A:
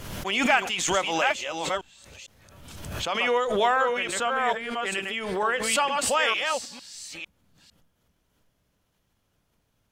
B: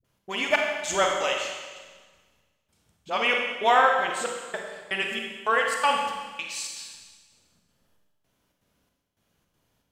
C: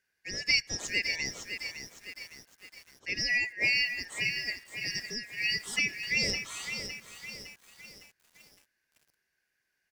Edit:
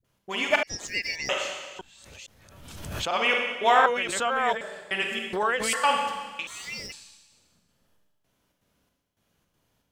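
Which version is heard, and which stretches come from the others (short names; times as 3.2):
B
0.63–1.29 from C
1.79–3.11 from A
3.86–4.61 from A
5.33–5.73 from A
6.47–6.92 from C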